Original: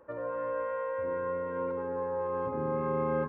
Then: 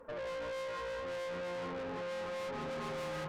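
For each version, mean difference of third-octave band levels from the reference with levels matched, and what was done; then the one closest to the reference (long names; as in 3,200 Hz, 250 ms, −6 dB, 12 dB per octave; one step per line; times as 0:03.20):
11.0 dB: flanger 1.1 Hz, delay 4.1 ms, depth 2.3 ms, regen +2%
tuned comb filter 90 Hz, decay 0.26 s, harmonics all, mix 60%
tube saturation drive 52 dB, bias 0.6
level +13.5 dB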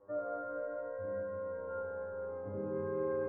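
4.5 dB: low-pass filter 1,000 Hz 12 dB per octave
tuned comb filter 100 Hz, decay 1.2 s, harmonics all, mix 100%
four-comb reverb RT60 1.7 s, combs from 32 ms, DRR 1.5 dB
level +16 dB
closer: second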